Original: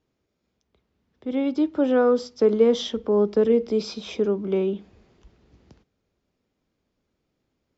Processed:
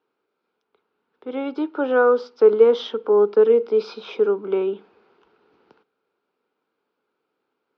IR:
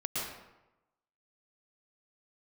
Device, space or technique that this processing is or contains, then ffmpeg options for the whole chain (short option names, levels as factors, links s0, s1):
phone earpiece: -filter_complex "[0:a]asettb=1/sr,asplit=3[s0][s1][s2];[s0]atrim=end=3.094[s3];[s1]atrim=start=3.09:end=3.73,asetpts=PTS-STARTPTS,afade=t=in:d=0.004:c=qsin,afade=t=out:st=0.636:d=0.004:c=qsin,agate=range=0.0224:threshold=0.0447:ratio=3:detection=peak[s4];[s2]atrim=start=3.726[s5];[s3][s4]acrossfade=d=0.004:c1=hsin:c2=qsin[s6];[s6][s5]acrossfade=d=0.004:c1=qsin:c2=hsin,highpass=420,equalizer=f=430:t=q:w=4:g=6,equalizer=f=620:t=q:w=4:g=-6,equalizer=f=900:t=q:w=4:g=5,equalizer=f=1400:t=q:w=4:g=9,equalizer=f=1900:t=q:w=4:g=-7,equalizer=f=3400:t=q:w=4:g=-4,lowpass=f=3900:w=0.5412,lowpass=f=3900:w=1.3066,volume=1.41"